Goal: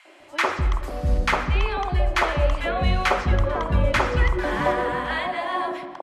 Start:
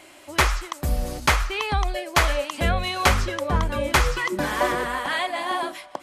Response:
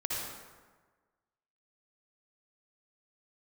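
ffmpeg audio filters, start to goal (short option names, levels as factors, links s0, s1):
-filter_complex "[0:a]aemphasis=mode=reproduction:type=75fm,acrossover=split=280|1100[s0][s1][s2];[s1]adelay=50[s3];[s0]adelay=200[s4];[s4][s3][s2]amix=inputs=3:normalize=0,asplit=2[s5][s6];[1:a]atrim=start_sample=2205,lowpass=3600[s7];[s6][s7]afir=irnorm=-1:irlink=0,volume=0.251[s8];[s5][s8]amix=inputs=2:normalize=0"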